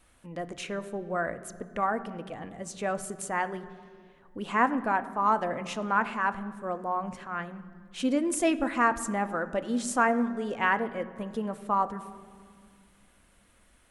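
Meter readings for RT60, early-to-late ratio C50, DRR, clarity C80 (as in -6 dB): 2.1 s, 15.0 dB, 11.0 dB, 16.0 dB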